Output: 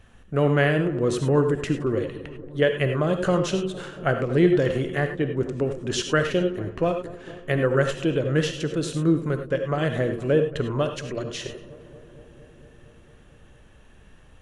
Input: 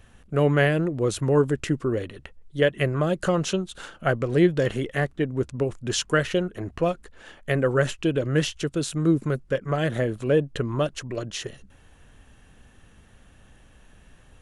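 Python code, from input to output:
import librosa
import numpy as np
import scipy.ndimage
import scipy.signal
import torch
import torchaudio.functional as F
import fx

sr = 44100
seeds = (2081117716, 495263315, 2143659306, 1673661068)

y = fx.high_shelf(x, sr, hz=6700.0, db=-7.0)
y = fx.echo_filtered(y, sr, ms=230, feedback_pct=81, hz=1500.0, wet_db=-18.0)
y = fx.rev_gated(y, sr, seeds[0], gate_ms=120, shape='rising', drr_db=6.5)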